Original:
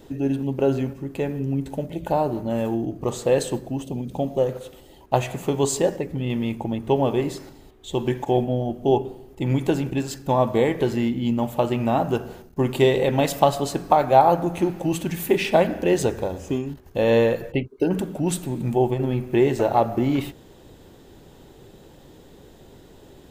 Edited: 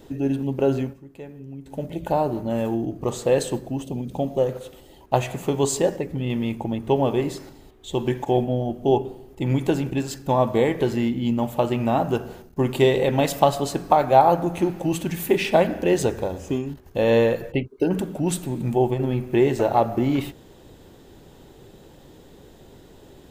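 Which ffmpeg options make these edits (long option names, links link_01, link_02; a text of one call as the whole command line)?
ffmpeg -i in.wav -filter_complex "[0:a]asplit=3[link_01][link_02][link_03];[link_01]atrim=end=1.01,asetpts=PTS-STARTPTS,afade=type=out:start_time=0.8:duration=0.21:silence=0.223872[link_04];[link_02]atrim=start=1.01:end=1.64,asetpts=PTS-STARTPTS,volume=-13dB[link_05];[link_03]atrim=start=1.64,asetpts=PTS-STARTPTS,afade=type=in:duration=0.21:silence=0.223872[link_06];[link_04][link_05][link_06]concat=n=3:v=0:a=1" out.wav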